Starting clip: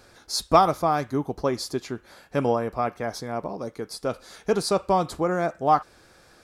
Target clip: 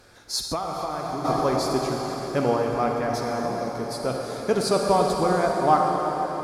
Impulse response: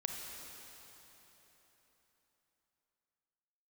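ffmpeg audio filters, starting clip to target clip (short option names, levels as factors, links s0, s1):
-filter_complex "[1:a]atrim=start_sample=2205,asetrate=33516,aresample=44100[s0];[0:a][s0]afir=irnorm=-1:irlink=0,asplit=3[s1][s2][s3];[s1]afade=t=out:st=0.46:d=0.02[s4];[s2]acompressor=threshold=0.0447:ratio=5,afade=t=in:st=0.46:d=0.02,afade=t=out:st=1.24:d=0.02[s5];[s3]afade=t=in:st=1.24:d=0.02[s6];[s4][s5][s6]amix=inputs=3:normalize=0"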